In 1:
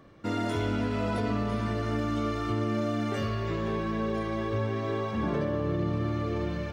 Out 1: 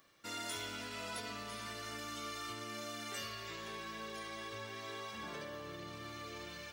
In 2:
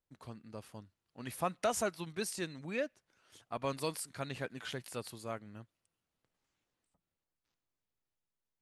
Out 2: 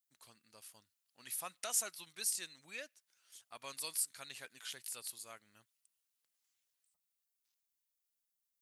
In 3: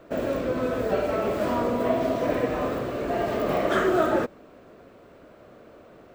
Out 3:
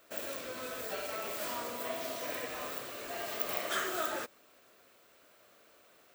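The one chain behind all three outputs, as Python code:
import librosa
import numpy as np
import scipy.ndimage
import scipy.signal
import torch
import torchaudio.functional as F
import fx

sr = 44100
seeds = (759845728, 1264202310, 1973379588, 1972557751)

y = F.preemphasis(torch.from_numpy(x), 0.97).numpy()
y = y * librosa.db_to_amplitude(5.5)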